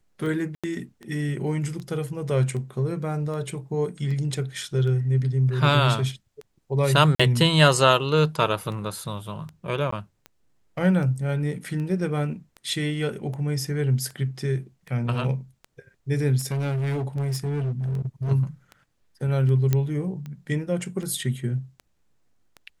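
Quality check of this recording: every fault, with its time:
tick 78 rpm
0.55–0.64 s: dropout 86 ms
7.15–7.20 s: dropout 45 ms
9.91–9.92 s: dropout 14 ms
16.38–18.32 s: clipped -23.5 dBFS
19.73 s: pop -9 dBFS

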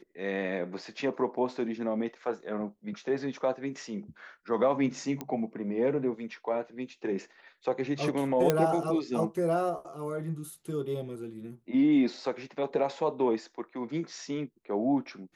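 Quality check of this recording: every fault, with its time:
5.21 s: pop -20 dBFS
8.50 s: pop -10 dBFS

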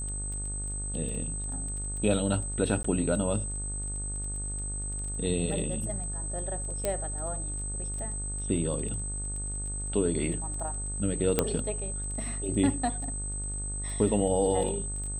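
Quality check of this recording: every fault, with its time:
buzz 50 Hz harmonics 34 -36 dBFS
crackle 12 per s -36 dBFS
whine 8.2 kHz -35 dBFS
2.83–2.84 s: dropout
6.85 s: pop -14 dBFS
11.39 s: pop -8 dBFS

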